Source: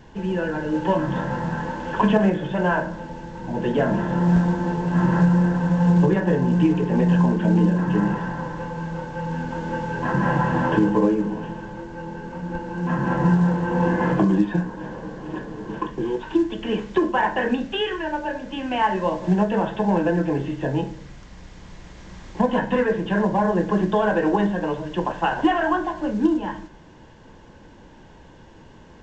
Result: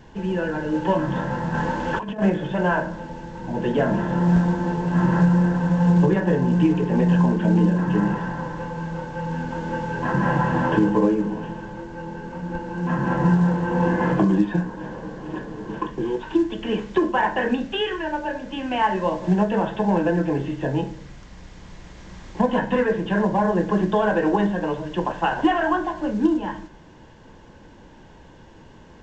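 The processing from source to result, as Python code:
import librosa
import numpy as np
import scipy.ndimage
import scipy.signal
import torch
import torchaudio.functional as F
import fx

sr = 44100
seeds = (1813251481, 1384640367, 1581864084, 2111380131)

y = fx.over_compress(x, sr, threshold_db=-23.0, ratio=-0.5, at=(1.54, 2.22))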